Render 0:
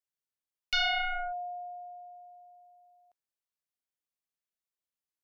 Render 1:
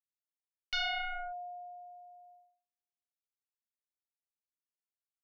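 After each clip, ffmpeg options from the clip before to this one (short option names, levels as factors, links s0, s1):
-af "agate=range=0.00891:threshold=0.002:ratio=16:detection=peak,volume=0.531"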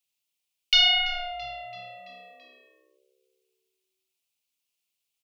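-filter_complex "[0:a]highshelf=f=2100:t=q:w=3:g=7,asplit=6[s0][s1][s2][s3][s4][s5];[s1]adelay=334,afreqshift=-67,volume=0.119[s6];[s2]adelay=668,afreqshift=-134,volume=0.0692[s7];[s3]adelay=1002,afreqshift=-201,volume=0.0398[s8];[s4]adelay=1336,afreqshift=-268,volume=0.0232[s9];[s5]adelay=1670,afreqshift=-335,volume=0.0135[s10];[s0][s6][s7][s8][s9][s10]amix=inputs=6:normalize=0,volume=2.11"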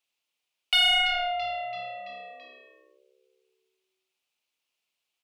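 -filter_complex "[0:a]asplit=2[s0][s1];[s1]highpass=f=720:p=1,volume=5.62,asoftclip=type=tanh:threshold=0.376[s2];[s0][s2]amix=inputs=2:normalize=0,lowpass=f=1500:p=1,volume=0.501"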